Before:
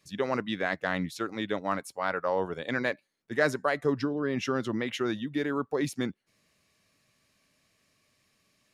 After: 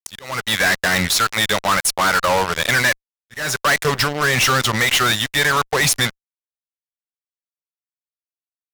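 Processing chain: amplifier tone stack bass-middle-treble 10-0-10; fuzz box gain 51 dB, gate -52 dBFS; slow attack 387 ms

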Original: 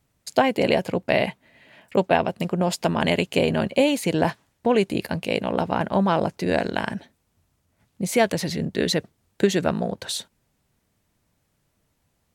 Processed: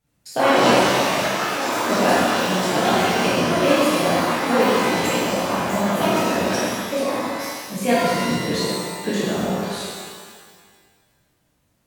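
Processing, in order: wide varispeed 1.04×; ever faster or slower copies 124 ms, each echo +5 st, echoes 3; level held to a coarse grid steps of 9 dB; pitch-shifted reverb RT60 1.7 s, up +12 st, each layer -8 dB, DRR -10.5 dB; trim -6 dB

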